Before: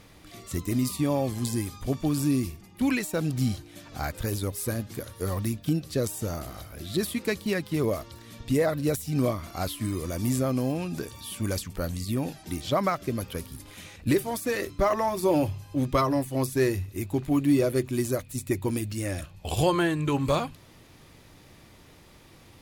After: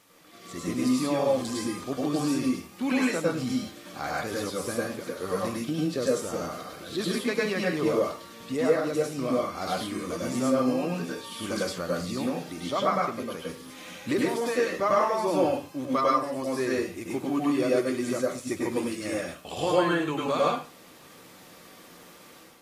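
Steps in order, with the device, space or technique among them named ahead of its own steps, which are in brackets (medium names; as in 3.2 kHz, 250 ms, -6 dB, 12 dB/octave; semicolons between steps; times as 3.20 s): filmed off a television (band-pass 240–7100 Hz; peaking EQ 1.2 kHz +6.5 dB 0.22 oct; reverberation RT60 0.30 s, pre-delay 94 ms, DRR -3.5 dB; white noise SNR 29 dB; level rider gain up to 7 dB; trim -9 dB; AAC 48 kbps 32 kHz)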